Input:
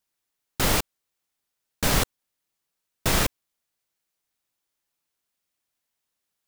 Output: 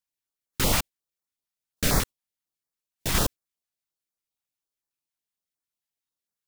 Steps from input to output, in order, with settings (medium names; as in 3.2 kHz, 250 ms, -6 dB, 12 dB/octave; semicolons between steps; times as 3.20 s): 2.00–3.15 s: hard clipper -22.5 dBFS, distortion -14 dB; spectral noise reduction 9 dB; step-sequenced notch 11 Hz 390–2900 Hz